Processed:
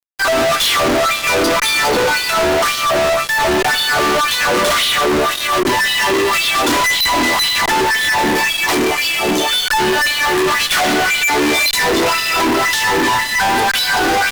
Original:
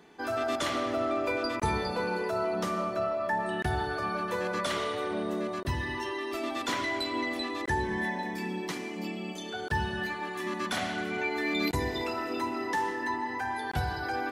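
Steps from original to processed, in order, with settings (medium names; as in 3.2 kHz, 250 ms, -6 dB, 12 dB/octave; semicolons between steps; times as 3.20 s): 6.97–7.81 s: comb filter that takes the minimum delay 1 ms; LFO high-pass sine 1.9 Hz 280–3600 Hz; fuzz box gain 48 dB, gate -48 dBFS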